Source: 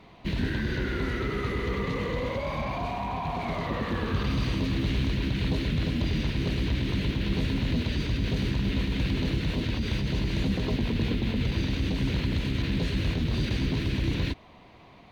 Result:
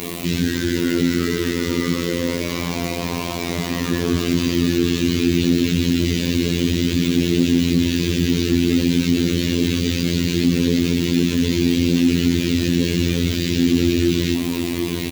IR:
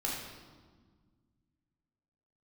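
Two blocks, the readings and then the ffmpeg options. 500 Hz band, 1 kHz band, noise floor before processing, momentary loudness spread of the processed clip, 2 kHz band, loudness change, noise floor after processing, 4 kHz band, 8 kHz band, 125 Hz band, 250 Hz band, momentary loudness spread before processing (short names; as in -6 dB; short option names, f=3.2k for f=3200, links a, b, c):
+10.5 dB, +1.0 dB, -52 dBFS, 6 LU, +7.5 dB, +9.5 dB, -25 dBFS, +11.0 dB, n/a, +5.5 dB, +13.0 dB, 3 LU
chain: -filter_complex "[0:a]flanger=delay=9.8:depth=3:regen=13:speed=0.31:shape=sinusoidal,asplit=2[a][b];[b]highpass=f=720:p=1,volume=34dB,asoftclip=type=tanh:threshold=-18dB[c];[a][c]amix=inputs=2:normalize=0,lowpass=f=5.7k:p=1,volume=-6dB,tremolo=f=34:d=0.621,aresample=16000,asoftclip=type=tanh:threshold=-29.5dB,aresample=44100,acrusher=bits=6:mix=0:aa=0.000001,lowshelf=f=480:t=q:w=1.5:g=13.5,aecho=1:1:754:0.473,crystalizer=i=4:c=0,highpass=50,afftfilt=real='hypot(re,im)*cos(PI*b)':imag='0':win_size=2048:overlap=0.75,acontrast=35,adynamicequalizer=threshold=0.0141:dfrequency=6200:dqfactor=0.7:tfrequency=6200:tqfactor=0.7:attack=5:release=100:ratio=0.375:range=2:mode=cutabove:tftype=highshelf,volume=-1dB"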